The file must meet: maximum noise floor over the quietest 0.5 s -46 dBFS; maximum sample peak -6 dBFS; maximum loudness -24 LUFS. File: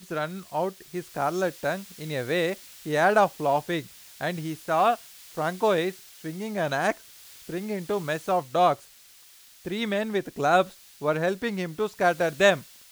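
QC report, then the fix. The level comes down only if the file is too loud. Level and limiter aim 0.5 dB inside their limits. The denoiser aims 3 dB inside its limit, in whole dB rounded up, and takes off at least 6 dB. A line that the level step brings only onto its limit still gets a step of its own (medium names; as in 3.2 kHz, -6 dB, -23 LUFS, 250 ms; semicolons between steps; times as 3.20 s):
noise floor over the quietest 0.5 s -53 dBFS: pass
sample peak -7.5 dBFS: pass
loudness -26.5 LUFS: pass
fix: none needed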